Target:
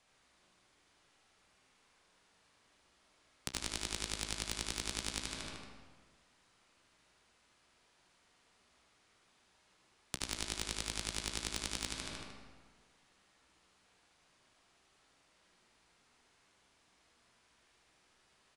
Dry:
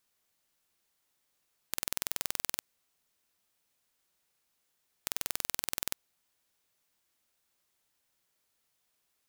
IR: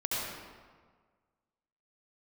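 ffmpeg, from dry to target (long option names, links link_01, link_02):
-filter_complex "[0:a]flanger=delay=7.5:depth=1.3:regen=54:speed=1.2:shape=triangular,asetrate=22050,aresample=44100,asplit=2[link_01][link_02];[link_02]aeval=exprs='val(0)*gte(abs(val(0)),0.0251)':channel_layout=same,volume=-6.5dB[link_03];[link_01][link_03]amix=inputs=2:normalize=0,aemphasis=mode=reproduction:type=50fm,aecho=1:1:76|152|228|304|380|456:0.562|0.281|0.141|0.0703|0.0351|0.0176,acrossover=split=310|3000[link_04][link_05][link_06];[link_05]acompressor=threshold=-56dB:ratio=2[link_07];[link_04][link_07][link_06]amix=inputs=3:normalize=0,asplit=2[link_08][link_09];[1:a]atrim=start_sample=2205[link_10];[link_09][link_10]afir=irnorm=-1:irlink=0,volume=-11.5dB[link_11];[link_08][link_11]amix=inputs=2:normalize=0,acompressor=threshold=-46dB:ratio=3,asoftclip=type=tanh:threshold=-28.5dB,volume=11dB"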